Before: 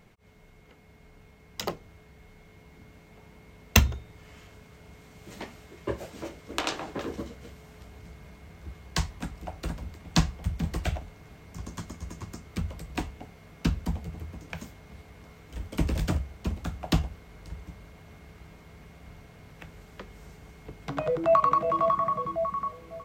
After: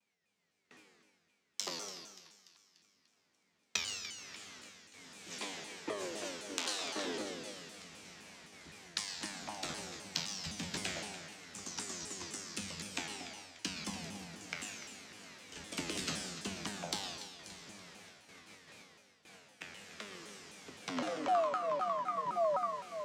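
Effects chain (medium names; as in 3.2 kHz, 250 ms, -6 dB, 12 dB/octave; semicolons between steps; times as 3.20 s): frequency weighting ITU-R 468; gate with hold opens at -41 dBFS; peaking EQ 240 Hz +11.5 dB 1.9 oct; compression 6:1, threshold -29 dBFS, peak gain reduction 21.5 dB; feedback comb 94 Hz, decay 1.1 s, harmonics all, mix 90%; two-band feedback delay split 1.2 kHz, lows 98 ms, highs 291 ms, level -14 dB; reverberation RT60 1.3 s, pre-delay 117 ms, DRR 6 dB; vibrato with a chosen wave saw down 3.9 Hz, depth 250 cents; trim +9 dB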